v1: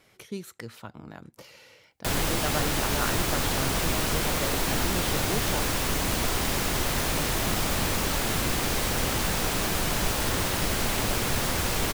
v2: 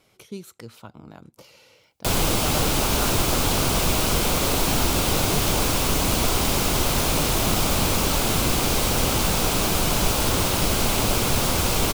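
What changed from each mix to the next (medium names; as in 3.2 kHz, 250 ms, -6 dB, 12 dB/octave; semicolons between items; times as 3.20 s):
background +5.5 dB; master: add peaking EQ 1.8 kHz -9 dB 0.4 oct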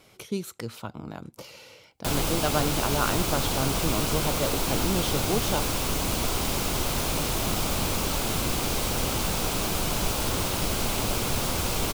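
speech +5.5 dB; background -5.5 dB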